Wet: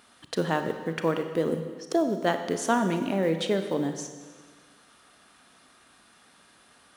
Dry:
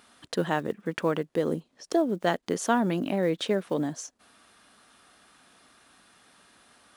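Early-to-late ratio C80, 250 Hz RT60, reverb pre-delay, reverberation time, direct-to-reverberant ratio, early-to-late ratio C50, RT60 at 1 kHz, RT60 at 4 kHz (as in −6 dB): 9.5 dB, 1.6 s, 31 ms, 1.6 s, 7.0 dB, 8.5 dB, 1.6 s, 1.5 s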